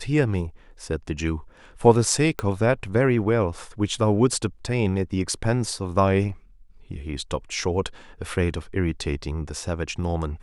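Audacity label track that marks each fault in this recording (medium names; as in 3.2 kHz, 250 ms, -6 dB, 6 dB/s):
2.390000	2.390000	pop -13 dBFS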